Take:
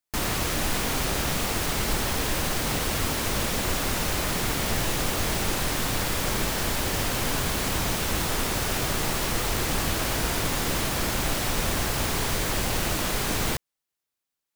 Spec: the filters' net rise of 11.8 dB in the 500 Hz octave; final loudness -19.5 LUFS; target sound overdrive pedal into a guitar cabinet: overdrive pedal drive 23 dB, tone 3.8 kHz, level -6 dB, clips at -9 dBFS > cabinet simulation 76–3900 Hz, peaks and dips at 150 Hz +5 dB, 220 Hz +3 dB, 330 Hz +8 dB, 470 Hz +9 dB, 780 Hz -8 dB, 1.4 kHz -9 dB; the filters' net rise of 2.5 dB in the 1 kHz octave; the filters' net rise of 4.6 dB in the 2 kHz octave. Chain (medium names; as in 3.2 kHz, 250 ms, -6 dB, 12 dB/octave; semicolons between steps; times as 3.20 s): peaking EQ 500 Hz +6 dB; peaking EQ 1 kHz +5 dB; peaking EQ 2 kHz +6.5 dB; overdrive pedal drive 23 dB, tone 3.8 kHz, level -6 dB, clips at -9 dBFS; cabinet simulation 76–3900 Hz, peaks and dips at 150 Hz +5 dB, 220 Hz +3 dB, 330 Hz +8 dB, 470 Hz +9 dB, 780 Hz -8 dB, 1.4 kHz -9 dB; trim -3 dB